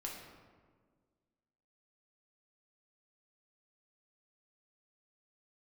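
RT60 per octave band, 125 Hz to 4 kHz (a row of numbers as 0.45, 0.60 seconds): 1.9, 2.0, 1.8, 1.5, 1.2, 0.85 seconds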